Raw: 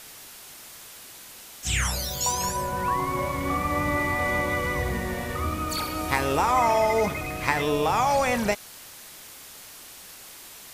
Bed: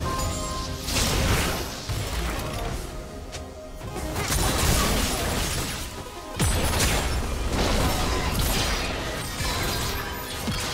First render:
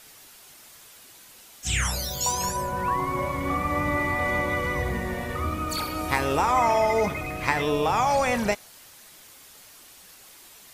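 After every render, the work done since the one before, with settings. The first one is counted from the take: noise reduction 6 dB, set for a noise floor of -45 dBFS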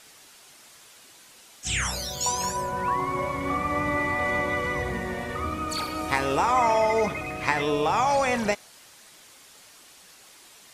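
low-pass 10 kHz 12 dB/octave; bass shelf 89 Hz -9 dB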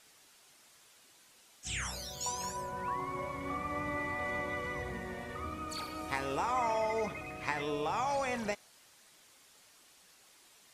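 trim -10.5 dB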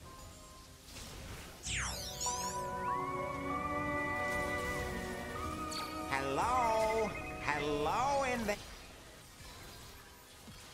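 add bed -25 dB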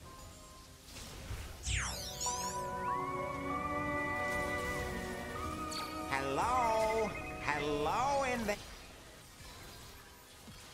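1.30–1.78 s: resonant low shelf 120 Hz +7 dB, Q 1.5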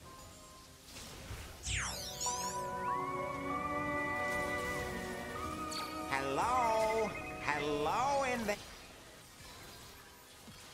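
bass shelf 79 Hz -7 dB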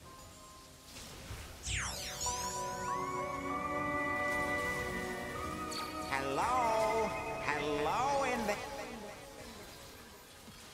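two-band feedback delay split 480 Hz, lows 551 ms, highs 299 ms, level -9.5 dB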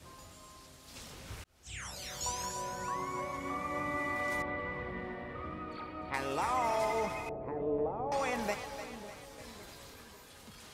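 1.44–2.18 s: fade in linear; 4.42–6.14 s: distance through air 440 m; 7.29–8.12 s: resonant low-pass 520 Hz, resonance Q 1.5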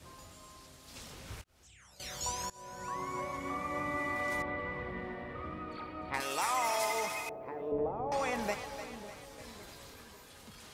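1.41–2.00 s: compression, threshold -57 dBFS; 2.50–3.27 s: fade in equal-power, from -21.5 dB; 6.20–7.72 s: tilt EQ +3.5 dB/octave

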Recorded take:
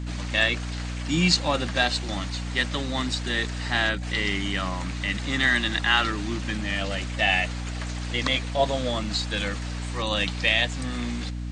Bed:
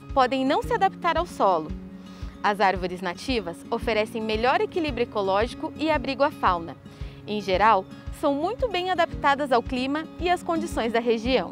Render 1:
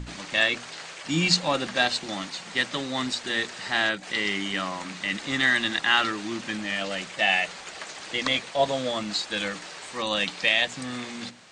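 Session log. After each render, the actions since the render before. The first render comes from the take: hum notches 60/120/180/240/300 Hz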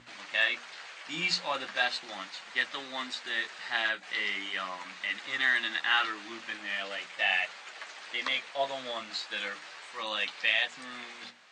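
flange 0.39 Hz, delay 7.9 ms, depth 9.7 ms, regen -34%; band-pass filter 1.8 kHz, Q 0.61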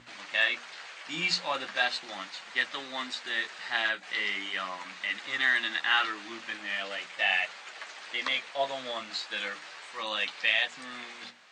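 trim +1 dB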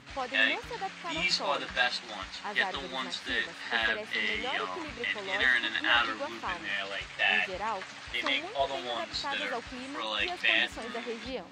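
add bed -15.5 dB

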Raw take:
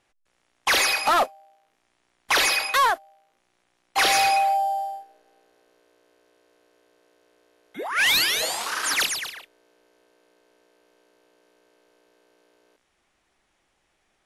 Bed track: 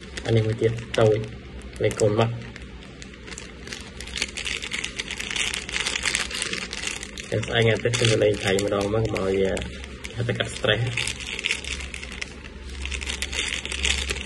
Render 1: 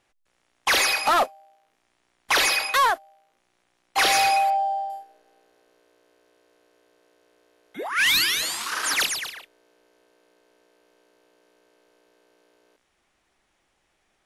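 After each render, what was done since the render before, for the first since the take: 4.50–4.90 s: distance through air 130 m; 7.89–8.72 s: high-order bell 610 Hz -12 dB 1.2 oct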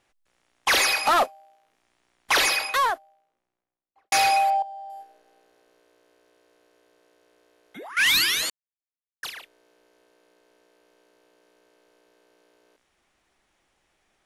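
2.33–4.12 s: studio fade out; 4.62–7.97 s: compression 10:1, threshold -36 dBFS; 8.50–9.23 s: mute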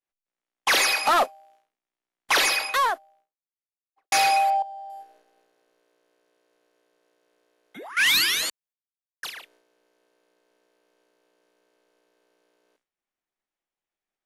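expander -56 dBFS; peaking EQ 61 Hz -14 dB 1 oct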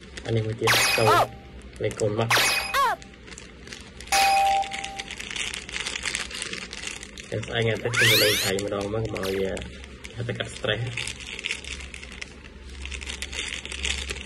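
add bed track -4.5 dB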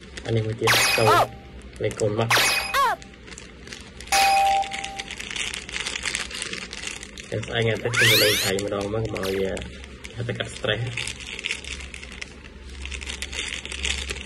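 trim +1.5 dB

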